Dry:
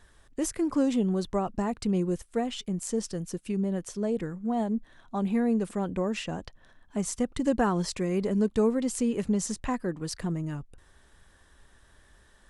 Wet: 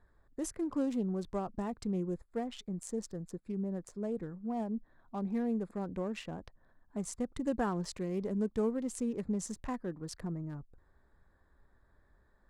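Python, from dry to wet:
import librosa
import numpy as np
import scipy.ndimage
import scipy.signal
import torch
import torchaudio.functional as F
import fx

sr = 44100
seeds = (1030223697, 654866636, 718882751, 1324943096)

y = fx.wiener(x, sr, points=15)
y = F.gain(torch.from_numpy(y), -7.5).numpy()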